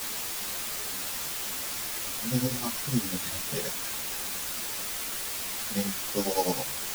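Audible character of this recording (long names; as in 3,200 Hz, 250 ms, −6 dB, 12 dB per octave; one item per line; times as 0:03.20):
a buzz of ramps at a fixed pitch in blocks of 8 samples
tremolo triangle 9.9 Hz, depth 95%
a quantiser's noise floor 6 bits, dither triangular
a shimmering, thickened sound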